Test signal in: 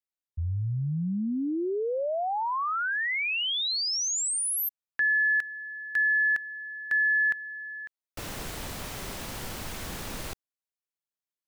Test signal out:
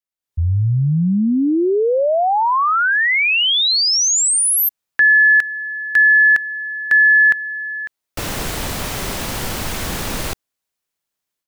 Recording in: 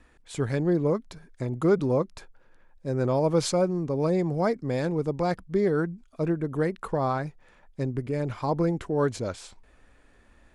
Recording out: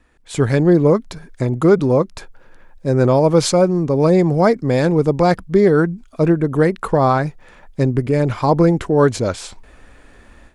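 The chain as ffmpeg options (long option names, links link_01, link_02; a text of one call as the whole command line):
ffmpeg -i in.wav -af "dynaudnorm=framelen=190:gausssize=3:maxgain=13dB" out.wav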